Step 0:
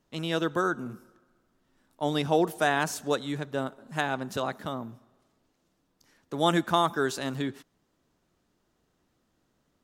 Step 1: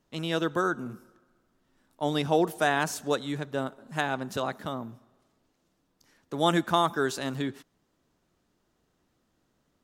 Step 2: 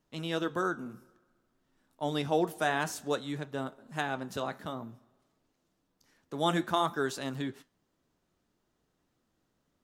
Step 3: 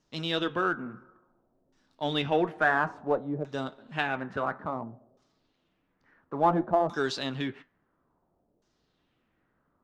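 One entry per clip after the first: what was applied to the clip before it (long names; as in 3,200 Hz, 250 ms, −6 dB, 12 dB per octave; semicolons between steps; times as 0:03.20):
no processing that can be heard
flanger 0.56 Hz, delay 6.2 ms, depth 6.2 ms, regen −72%
auto-filter low-pass saw down 0.58 Hz 530–6,200 Hz; in parallel at −9.5 dB: asymmetric clip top −31 dBFS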